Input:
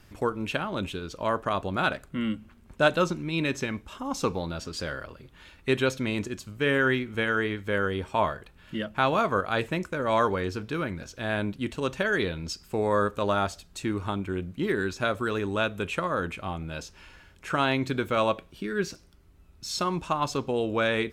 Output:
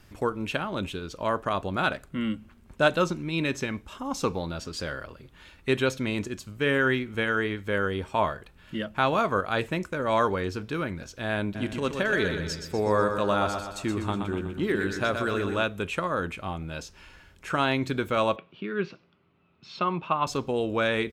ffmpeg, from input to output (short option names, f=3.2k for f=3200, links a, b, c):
-filter_complex "[0:a]asplit=3[a][b][c];[a]afade=t=out:st=11.54:d=0.02[d];[b]aecho=1:1:123|246|369|492|615|738:0.473|0.237|0.118|0.0591|0.0296|0.0148,afade=t=in:st=11.54:d=0.02,afade=t=out:st=15.62:d=0.02[e];[c]afade=t=in:st=15.62:d=0.02[f];[d][e][f]amix=inputs=3:normalize=0,asettb=1/sr,asplit=3[g][h][i];[g]atrim=end=18.364[j];[h]atrim=start=18.36:end=20.27,asetpts=PTS-STARTPTS,afade=t=in:d=0.004:c=qsin,afade=t=out:st=1.906:d=0.004:c=qsin,highpass=f=130:w=0.5412,highpass=f=130:w=1.3066,equalizer=f=280:t=q:w=4:g=-5,equalizer=f=1.2k:t=q:w=4:g=4,equalizer=f=1.7k:t=q:w=4:g=-4,equalizer=f=2.6k:t=q:w=4:g=4,lowpass=f=3.4k:w=0.5412,lowpass=f=3.4k:w=1.3066[k];[i]atrim=start=20.266[l];[j][k]acrossfade=d=0.004:c1=hsin:c2=qsin[m];[m][l]acrossfade=d=0.004:c1=qsin:c2=hsin"